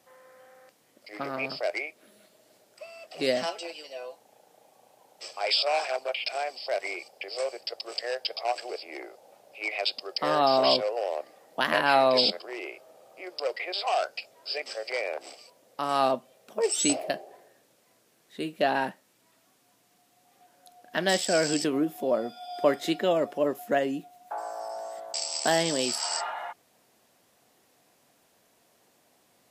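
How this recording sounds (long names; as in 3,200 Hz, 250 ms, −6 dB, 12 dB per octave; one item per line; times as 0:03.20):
background noise floor −66 dBFS
spectral slope −2.5 dB per octave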